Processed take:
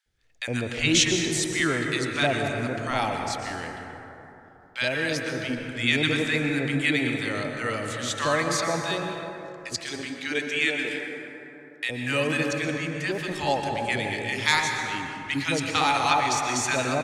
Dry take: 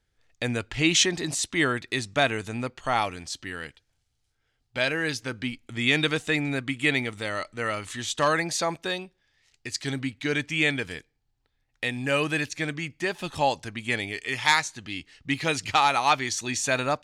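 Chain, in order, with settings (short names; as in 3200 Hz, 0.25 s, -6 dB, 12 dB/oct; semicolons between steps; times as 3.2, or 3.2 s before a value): 9.76–11.84 HPF 340 Hz 12 dB/oct; bands offset in time highs, lows 60 ms, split 1000 Hz; on a send at -3 dB: reverb RT60 3.3 s, pre-delay 0.108 s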